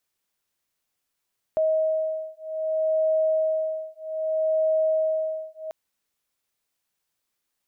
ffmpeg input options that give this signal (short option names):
-f lavfi -i "aevalsrc='0.0596*(sin(2*PI*632*t)+sin(2*PI*632.63*t))':d=4.14:s=44100"